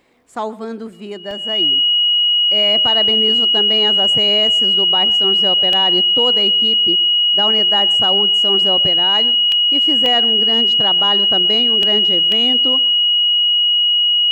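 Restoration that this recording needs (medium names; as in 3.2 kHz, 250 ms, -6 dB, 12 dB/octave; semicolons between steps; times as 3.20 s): band-stop 2.9 kHz, Q 30; interpolate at 1.31/5.73/9.52/10.06/11.83/12.32 s, 1.3 ms; inverse comb 124 ms -21 dB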